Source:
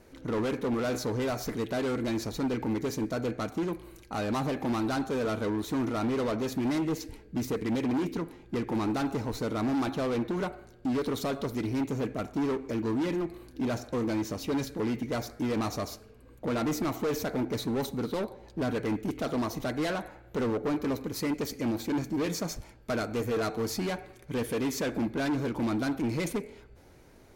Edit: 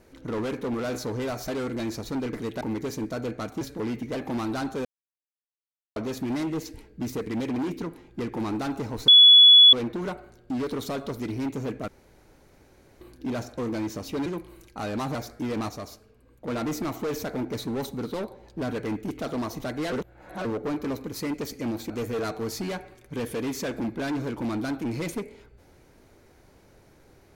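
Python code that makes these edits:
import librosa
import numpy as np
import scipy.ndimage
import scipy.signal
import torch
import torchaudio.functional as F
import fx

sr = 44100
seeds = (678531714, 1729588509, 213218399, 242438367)

y = fx.edit(x, sr, fx.move(start_s=1.48, length_s=0.28, to_s=2.61),
    fx.swap(start_s=3.61, length_s=0.89, other_s=14.61, other_length_s=0.54),
    fx.silence(start_s=5.2, length_s=1.11),
    fx.bleep(start_s=9.43, length_s=0.65, hz=3400.0, db=-9.0),
    fx.room_tone_fill(start_s=12.23, length_s=1.13),
    fx.clip_gain(start_s=15.69, length_s=0.79, db=-4.0),
    fx.reverse_span(start_s=19.92, length_s=0.53),
    fx.cut(start_s=21.9, length_s=1.18), tone=tone)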